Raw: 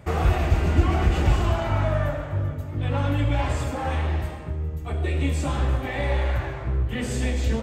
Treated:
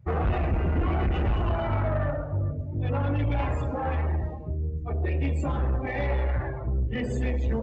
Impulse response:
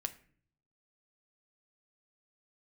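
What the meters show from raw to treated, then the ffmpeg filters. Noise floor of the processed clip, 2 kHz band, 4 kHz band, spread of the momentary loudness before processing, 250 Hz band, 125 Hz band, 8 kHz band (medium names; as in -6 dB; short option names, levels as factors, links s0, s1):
-34 dBFS, -4.5 dB, -9.5 dB, 7 LU, -2.5 dB, -3.0 dB, under -15 dB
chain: -af "afftdn=nr=24:nf=-34,equalizer=f=480:t=o:w=0.21:g=3,bandreject=f=3300:w=20,aresample=16000,asoftclip=type=tanh:threshold=0.1,aresample=44100"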